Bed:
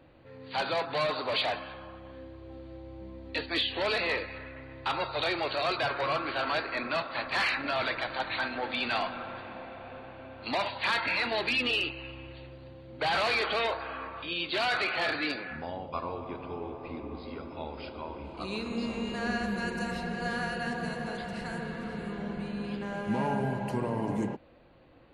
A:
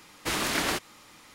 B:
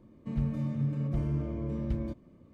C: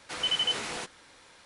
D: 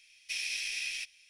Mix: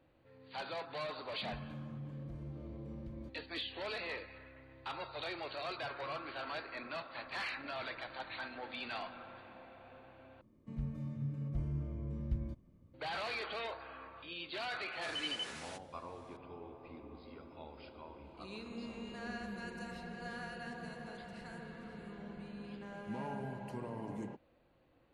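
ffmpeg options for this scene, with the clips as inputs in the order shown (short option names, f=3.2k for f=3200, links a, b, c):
-filter_complex "[2:a]asplit=2[a][b];[0:a]volume=-12dB[c];[a]alimiter=level_in=3.5dB:limit=-24dB:level=0:latency=1:release=71,volume=-3.5dB[d];[b]asubboost=boost=3.5:cutoff=180[e];[c]asplit=2[f][g];[f]atrim=end=10.414[h];[e]atrim=end=2.53,asetpts=PTS-STARTPTS,volume=-10.5dB[i];[g]atrim=start=12.936[j];[d]atrim=end=2.53,asetpts=PTS-STARTPTS,volume=-11.5dB,afade=t=in:d=0.004:c=hsin,afade=t=out:st=2.526:d=0.004:c=hsin,adelay=1160[k];[3:a]atrim=end=1.45,asetpts=PTS-STARTPTS,volume=-12.5dB,afade=t=in:d=0.004:c=hsin,afade=t=out:st=1.446:d=0.004:c=hsin,adelay=657972S[l];[h][i]acrossfade=d=0.004:c1=hsin:c2=hsin[m];[m][j]acrossfade=d=0.004:c1=hsin:c2=hsin[n];[n][k][l]amix=inputs=3:normalize=0"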